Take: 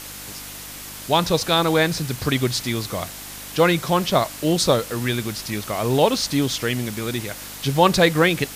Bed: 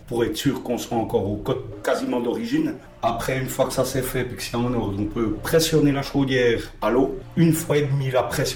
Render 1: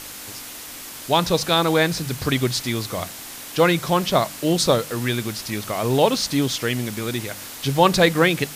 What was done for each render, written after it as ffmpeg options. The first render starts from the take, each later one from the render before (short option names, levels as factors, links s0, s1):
-af "bandreject=f=50:t=h:w=4,bandreject=f=100:t=h:w=4,bandreject=f=150:t=h:w=4,bandreject=f=200:t=h:w=4"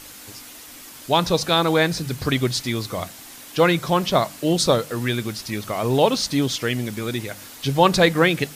-af "afftdn=nr=6:nf=-37"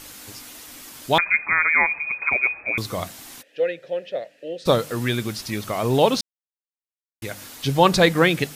-filter_complex "[0:a]asettb=1/sr,asplit=3[s0][s1][s2];[s0]atrim=end=1.184[s3];[s1]atrim=start=1.18:end=2.78,asetpts=PTS-STARTPTS,afade=t=in:d=0.004:c=qsin,afade=t=out:st=1.596:d=0.004:c=qsin,lowpass=f=2200:t=q:w=0.5098,lowpass=f=2200:t=q:w=0.6013,lowpass=f=2200:t=q:w=0.9,lowpass=f=2200:t=q:w=2.563,afreqshift=-2600[s4];[s2]atrim=start=2.776[s5];[s3][s4]acrossfade=d=0.004:c1=hsin:c2=qsin[s6];[s6][s5]acrossfade=d=0.004:c1=qsin:c2=hsin,asplit=3[s7][s8][s9];[s7]afade=t=out:st=3.41:d=0.02[s10];[s8]asplit=3[s11][s12][s13];[s11]bandpass=f=530:t=q:w=8,volume=1[s14];[s12]bandpass=f=1840:t=q:w=8,volume=0.501[s15];[s13]bandpass=f=2480:t=q:w=8,volume=0.355[s16];[s14][s15][s16]amix=inputs=3:normalize=0,afade=t=in:st=3.41:d=0.02,afade=t=out:st=4.65:d=0.02[s17];[s9]afade=t=in:st=4.65:d=0.02[s18];[s10][s17][s18]amix=inputs=3:normalize=0,asplit=3[s19][s20][s21];[s19]atrim=end=6.21,asetpts=PTS-STARTPTS,afade=t=out:st=6.206:d=0.004:c=hsin[s22];[s20]atrim=start=6.21:end=7.22,asetpts=PTS-STARTPTS,volume=0[s23];[s21]atrim=start=7.22,asetpts=PTS-STARTPTS,afade=t=in:d=0.004:c=hsin[s24];[s22][s23][s24]concat=n=3:v=0:a=1"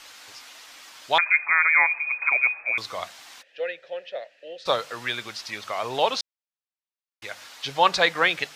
-filter_complex "[0:a]acrossover=split=590 6300:gain=0.1 1 0.141[s0][s1][s2];[s0][s1][s2]amix=inputs=3:normalize=0"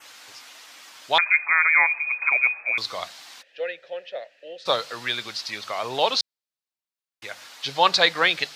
-af "highpass=86,adynamicequalizer=threshold=0.00794:dfrequency=4300:dqfactor=2.1:tfrequency=4300:tqfactor=2.1:attack=5:release=100:ratio=0.375:range=4:mode=boostabove:tftype=bell"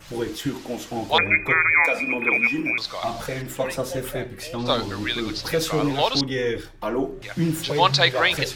-filter_complex "[1:a]volume=0.531[s0];[0:a][s0]amix=inputs=2:normalize=0"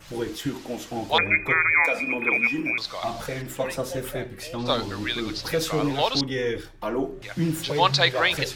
-af "volume=0.794"